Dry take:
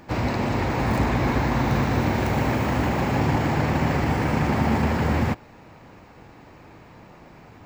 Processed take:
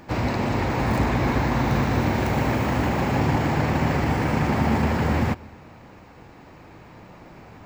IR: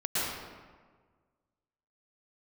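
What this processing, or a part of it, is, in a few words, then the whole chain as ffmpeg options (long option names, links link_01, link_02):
ducked reverb: -filter_complex "[0:a]asplit=3[link_01][link_02][link_03];[1:a]atrim=start_sample=2205[link_04];[link_02][link_04]afir=irnorm=-1:irlink=0[link_05];[link_03]apad=whole_len=337547[link_06];[link_05][link_06]sidechaincompress=threshold=-40dB:ratio=4:attack=16:release=1410,volume=-14dB[link_07];[link_01][link_07]amix=inputs=2:normalize=0"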